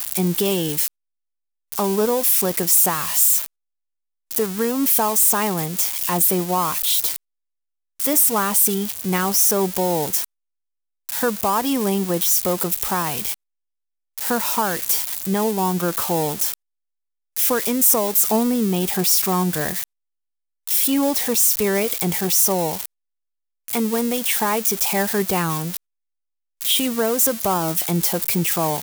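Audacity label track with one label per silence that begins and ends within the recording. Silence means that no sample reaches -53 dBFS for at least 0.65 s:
0.880000	1.720000	silence
3.460000	4.310000	silence
7.160000	8.000000	silence
10.250000	11.090000	silence
13.340000	14.180000	silence
16.540000	17.360000	silence
19.840000	20.670000	silence
22.860000	23.680000	silence
25.770000	26.610000	silence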